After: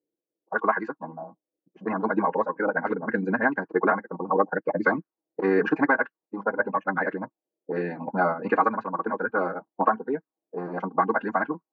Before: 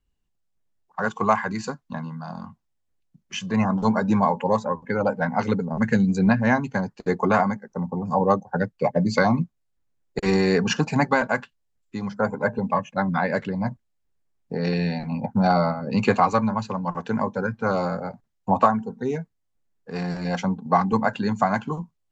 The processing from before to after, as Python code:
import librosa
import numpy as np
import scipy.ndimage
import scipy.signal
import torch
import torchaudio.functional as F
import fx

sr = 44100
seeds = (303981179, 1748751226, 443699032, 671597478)

y = x + 0.33 * np.pad(x, (int(6.3 * sr / 1000.0), 0))[:len(x)]
y = fx.stretch_vocoder(y, sr, factor=0.53)
y = fx.highpass_res(y, sr, hz=320.0, q=3.7)
y = fx.envelope_lowpass(y, sr, base_hz=520.0, top_hz=1600.0, q=3.3, full_db=-20.5, direction='up')
y = y * 10.0 ** (-6.0 / 20.0)